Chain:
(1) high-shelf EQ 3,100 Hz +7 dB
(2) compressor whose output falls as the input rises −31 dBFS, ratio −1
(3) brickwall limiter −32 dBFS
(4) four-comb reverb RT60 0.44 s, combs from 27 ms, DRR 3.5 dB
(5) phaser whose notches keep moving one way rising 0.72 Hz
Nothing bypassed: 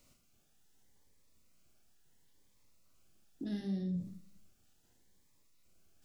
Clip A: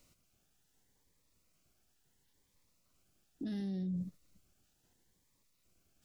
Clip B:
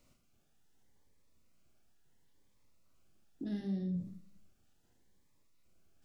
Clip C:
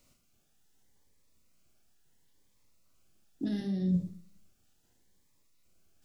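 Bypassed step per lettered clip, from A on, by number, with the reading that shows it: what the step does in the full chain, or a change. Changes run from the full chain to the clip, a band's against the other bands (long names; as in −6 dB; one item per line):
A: 4, change in momentary loudness spread −5 LU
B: 1, 4 kHz band −4.0 dB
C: 3, average gain reduction 4.5 dB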